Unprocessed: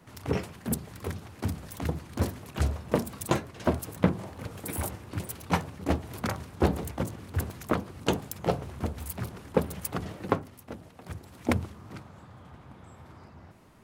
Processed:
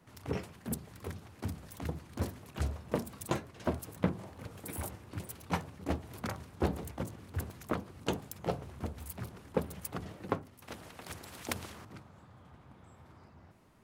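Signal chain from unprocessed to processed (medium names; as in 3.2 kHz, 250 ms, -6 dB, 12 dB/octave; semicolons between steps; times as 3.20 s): 10.62–11.85 s: spectrum-flattening compressor 2:1; trim -7 dB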